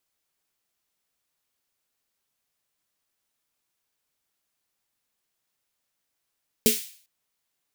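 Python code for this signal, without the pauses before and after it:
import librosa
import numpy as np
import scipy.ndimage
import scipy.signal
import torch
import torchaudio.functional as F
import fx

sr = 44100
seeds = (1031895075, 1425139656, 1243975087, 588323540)

y = fx.drum_snare(sr, seeds[0], length_s=0.4, hz=230.0, second_hz=430.0, noise_db=-1.5, noise_from_hz=2300.0, decay_s=0.18, noise_decay_s=0.49)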